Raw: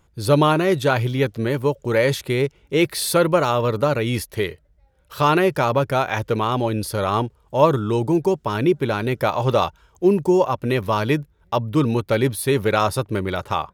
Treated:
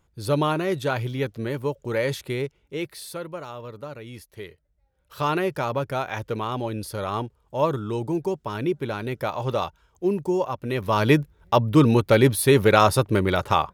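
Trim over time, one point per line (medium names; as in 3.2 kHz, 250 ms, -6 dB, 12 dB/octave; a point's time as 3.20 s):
2.33 s -6.5 dB
3.25 s -17.5 dB
4.17 s -17.5 dB
5.21 s -7 dB
10.69 s -7 dB
11.09 s +2.5 dB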